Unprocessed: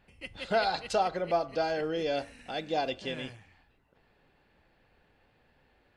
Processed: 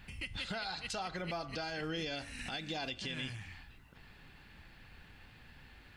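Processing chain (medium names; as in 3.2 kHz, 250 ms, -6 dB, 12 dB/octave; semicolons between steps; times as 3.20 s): peaking EQ 530 Hz -14.5 dB 1.7 oct; compression 5:1, threshold -49 dBFS, peak gain reduction 16 dB; peak limiter -43 dBFS, peak gain reduction 7 dB; trim +13.5 dB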